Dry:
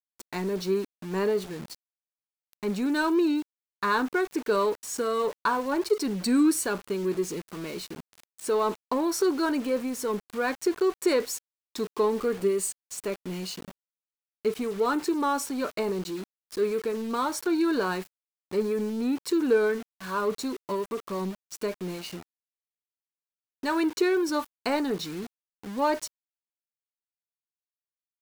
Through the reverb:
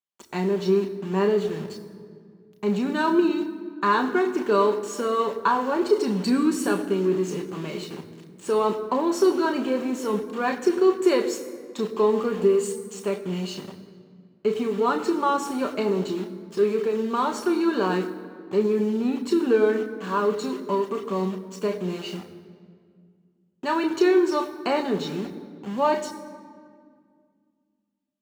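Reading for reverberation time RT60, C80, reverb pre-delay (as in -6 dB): 2.1 s, 12.0 dB, 3 ms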